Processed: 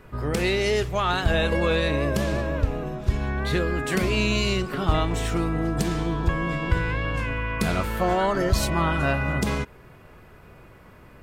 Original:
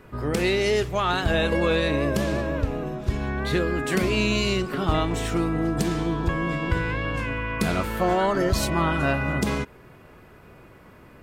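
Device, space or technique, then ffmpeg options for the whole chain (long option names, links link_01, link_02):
low shelf boost with a cut just above: -af "lowshelf=frequency=64:gain=6,equalizer=frequency=290:width_type=o:width=0.97:gain=-3"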